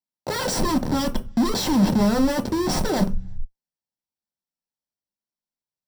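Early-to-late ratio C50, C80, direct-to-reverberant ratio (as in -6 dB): 16.0 dB, 24.0 dB, 5.0 dB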